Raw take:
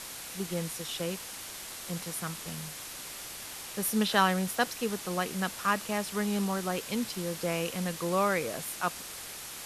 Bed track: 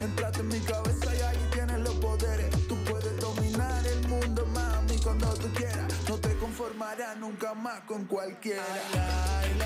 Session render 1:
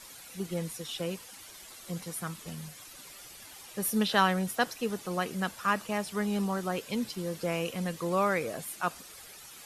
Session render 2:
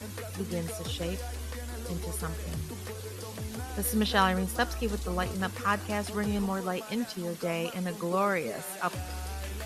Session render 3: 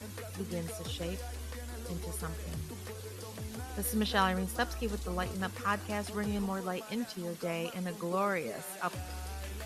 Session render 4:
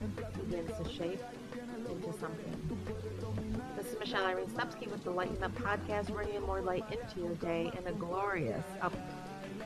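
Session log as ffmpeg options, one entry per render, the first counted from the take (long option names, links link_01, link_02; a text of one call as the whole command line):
ffmpeg -i in.wav -af "afftdn=noise_reduction=11:noise_floor=-43" out.wav
ffmpeg -i in.wav -i bed.wav -filter_complex "[1:a]volume=-9dB[link_01];[0:a][link_01]amix=inputs=2:normalize=0" out.wav
ffmpeg -i in.wav -af "volume=-4dB" out.wav
ffmpeg -i in.wav -af "aemphasis=mode=reproduction:type=riaa,afftfilt=real='re*lt(hypot(re,im),0.2)':imag='im*lt(hypot(re,im),0.2)':win_size=1024:overlap=0.75" out.wav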